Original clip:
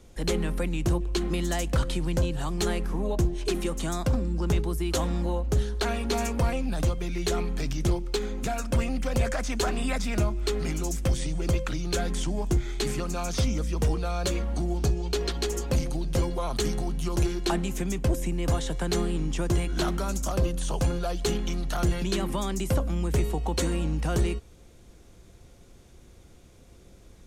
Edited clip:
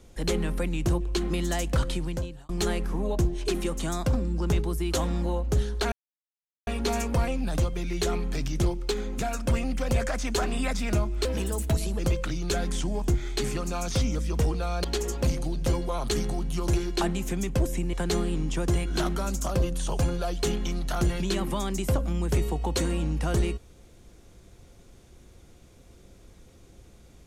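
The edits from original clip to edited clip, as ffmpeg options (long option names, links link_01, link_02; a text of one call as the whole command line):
ffmpeg -i in.wav -filter_complex "[0:a]asplit=7[link_01][link_02][link_03][link_04][link_05][link_06][link_07];[link_01]atrim=end=2.49,asetpts=PTS-STARTPTS,afade=type=out:start_time=1.9:duration=0.59[link_08];[link_02]atrim=start=2.49:end=5.92,asetpts=PTS-STARTPTS,afade=type=in:duration=0.004:curve=hsin,afade=type=out:start_time=3.426:duration=0.004:curve=hsin,apad=pad_dur=0.75[link_09];[link_03]atrim=start=5.92:end=10.504,asetpts=PTS-STARTPTS,afade=type=in:duration=0.004:curve=hsin[link_10];[link_04]atrim=start=10.5:end=11.42,asetpts=PTS-STARTPTS,asetrate=54684,aresample=44100,atrim=end_sample=32719,asetpts=PTS-STARTPTS[link_11];[link_05]atrim=start=11.416:end=14.272[link_12];[link_06]atrim=start=15.328:end=18.422[link_13];[link_07]atrim=start=18.748[link_14];[link_08][link_09][link_10]concat=n=3:v=0:a=1[link_15];[link_15][link_11]acrossfade=duration=0.004:curve1=hsin:curve2=hsin[link_16];[link_16][link_12]acrossfade=duration=0.004:curve1=hsin:curve2=hsin[link_17];[link_17][link_13]acrossfade=duration=0.004:curve1=hsin:curve2=hsin[link_18];[link_18][link_14]acrossfade=duration=0.004:curve1=hsin:curve2=hsin" out.wav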